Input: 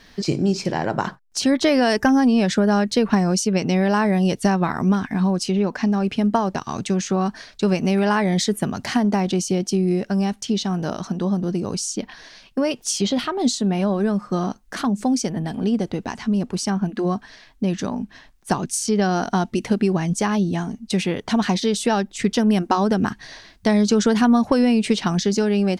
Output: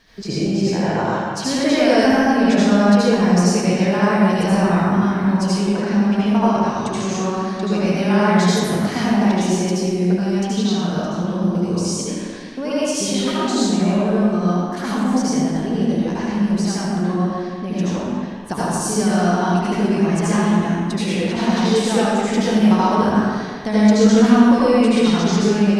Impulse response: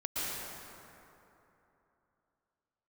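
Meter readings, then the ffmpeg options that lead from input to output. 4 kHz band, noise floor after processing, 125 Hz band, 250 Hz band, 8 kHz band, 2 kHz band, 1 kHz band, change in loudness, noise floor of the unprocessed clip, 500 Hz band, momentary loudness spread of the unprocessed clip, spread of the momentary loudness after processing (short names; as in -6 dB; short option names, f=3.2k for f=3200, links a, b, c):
+2.0 dB, -27 dBFS, +3.5 dB, +3.5 dB, +1.0 dB, +3.5 dB, +3.5 dB, +3.5 dB, -51 dBFS, +3.5 dB, 8 LU, 8 LU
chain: -filter_complex "[1:a]atrim=start_sample=2205,asetrate=70560,aresample=44100[a];[0:a][a]afir=irnorm=-1:irlink=0,volume=1dB"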